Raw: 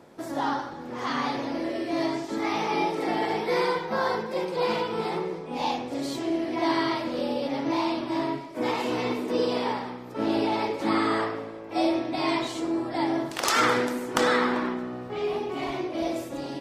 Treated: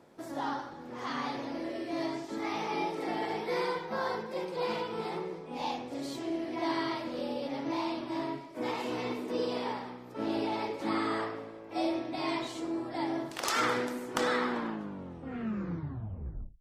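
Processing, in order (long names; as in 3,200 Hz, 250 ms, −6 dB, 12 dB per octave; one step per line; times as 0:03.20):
turntable brake at the end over 2.12 s
level −7 dB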